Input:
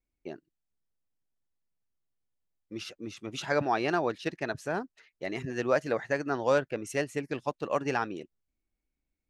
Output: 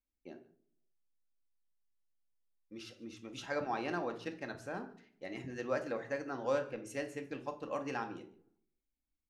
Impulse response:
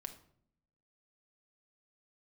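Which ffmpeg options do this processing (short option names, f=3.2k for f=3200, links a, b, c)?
-filter_complex "[0:a]aecho=1:1:145:0.0668[a];[1:a]atrim=start_sample=2205,asetrate=57330,aresample=44100[b];[a][b]afir=irnorm=-1:irlink=0,volume=-3dB"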